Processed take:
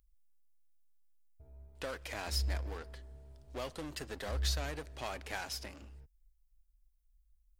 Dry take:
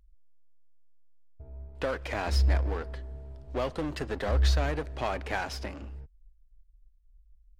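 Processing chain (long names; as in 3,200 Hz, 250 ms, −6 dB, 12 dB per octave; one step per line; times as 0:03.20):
first-order pre-emphasis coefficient 0.8
level +3 dB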